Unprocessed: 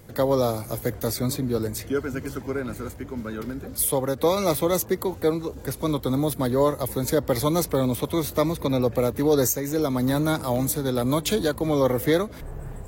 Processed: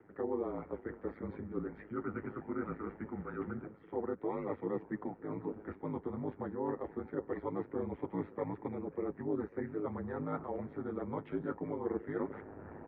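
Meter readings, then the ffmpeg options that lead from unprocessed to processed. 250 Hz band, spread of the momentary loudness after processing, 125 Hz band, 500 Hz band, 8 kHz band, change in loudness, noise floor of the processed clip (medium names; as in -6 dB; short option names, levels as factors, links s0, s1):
-13.5 dB, 5 LU, -18.0 dB, -15.0 dB, under -40 dB, -15.5 dB, -57 dBFS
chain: -filter_complex "[0:a]aecho=1:1:2.1:0.3,areverse,acompressor=threshold=0.0251:ratio=6,areverse,flanger=delay=4.4:depth=7.1:regen=-37:speed=0.23:shape=triangular,aeval=exprs='val(0)*sin(2*PI*52*n/s)':c=same,asplit=2[s0][s1];[s1]adelay=549,lowpass=f=1100:p=1,volume=0.0794,asplit=2[s2][s3];[s3]adelay=549,lowpass=f=1100:p=1,volume=0.48,asplit=2[s4][s5];[s5]adelay=549,lowpass=f=1100:p=1,volume=0.48[s6];[s0][s2][s4][s6]amix=inputs=4:normalize=0,highpass=f=240:t=q:w=0.5412,highpass=f=240:t=q:w=1.307,lowpass=f=2100:t=q:w=0.5176,lowpass=f=2100:t=q:w=0.7071,lowpass=f=2100:t=q:w=1.932,afreqshift=-100,volume=1.68"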